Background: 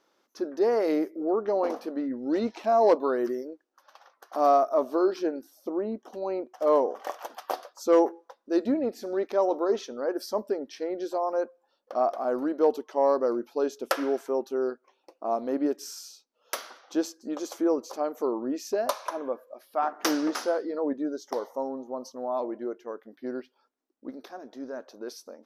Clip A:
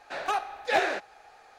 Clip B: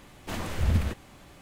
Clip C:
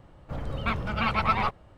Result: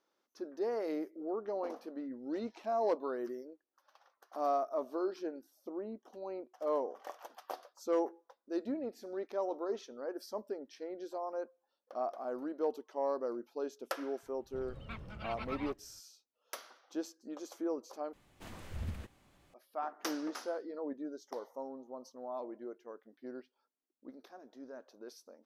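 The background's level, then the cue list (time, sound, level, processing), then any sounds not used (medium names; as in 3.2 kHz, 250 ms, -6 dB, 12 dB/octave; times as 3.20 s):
background -11.5 dB
14.23 s: add C -16 dB + peaking EQ 960 Hz -4.5 dB 1.3 oct
18.13 s: replace with B -15.5 dB
not used: A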